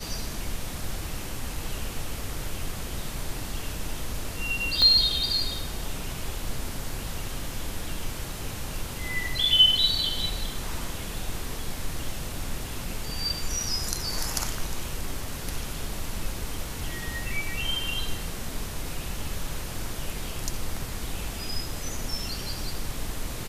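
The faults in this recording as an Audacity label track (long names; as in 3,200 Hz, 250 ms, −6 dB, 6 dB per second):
4.820000	4.820000	click −11 dBFS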